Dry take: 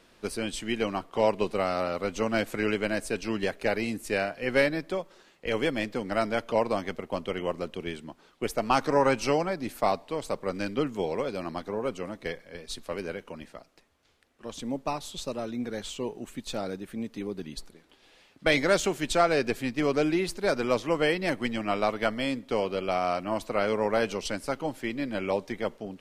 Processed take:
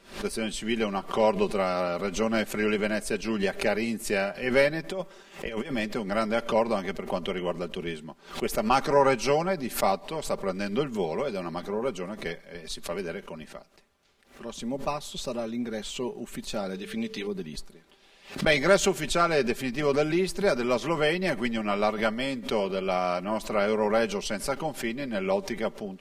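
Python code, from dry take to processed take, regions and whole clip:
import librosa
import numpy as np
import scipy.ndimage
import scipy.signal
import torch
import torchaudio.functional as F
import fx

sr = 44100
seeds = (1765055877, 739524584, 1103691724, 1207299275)

y = fx.chain(x, sr, fx.notch(hz=4200.0, q=11.0),
    fx.over_compress(threshold_db=-32.0, ratio=-0.5), at=(4.84, 5.76))
y = fx.peak_eq(y, sr, hz=3400.0, db=12.0, octaves=2.1, at=(16.74, 17.26), fade=0.02)
y = fx.hum_notches(y, sr, base_hz=50, count=4, at=(16.74, 17.26), fade=0.02)
y = fx.dmg_tone(y, sr, hz=440.0, level_db=-46.0, at=(16.74, 17.26), fade=0.02)
y = y + 0.5 * np.pad(y, (int(5.1 * sr / 1000.0), 0))[:len(y)]
y = fx.pre_swell(y, sr, db_per_s=140.0)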